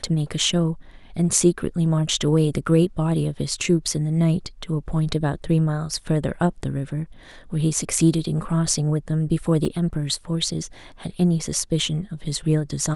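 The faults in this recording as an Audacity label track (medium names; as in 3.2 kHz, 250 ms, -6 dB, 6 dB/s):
9.650000	9.650000	dropout 3 ms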